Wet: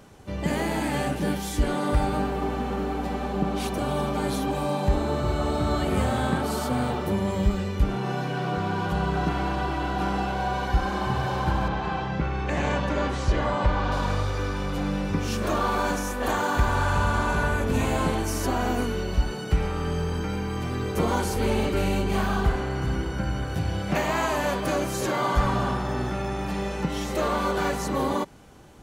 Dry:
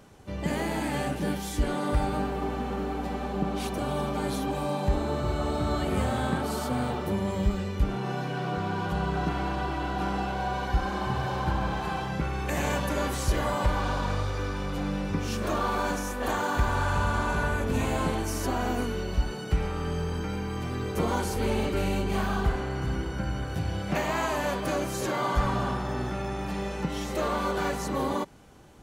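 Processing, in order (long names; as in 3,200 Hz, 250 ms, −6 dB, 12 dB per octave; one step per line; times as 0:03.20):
0:11.68–0:13.92: high-frequency loss of the air 120 metres
level +3 dB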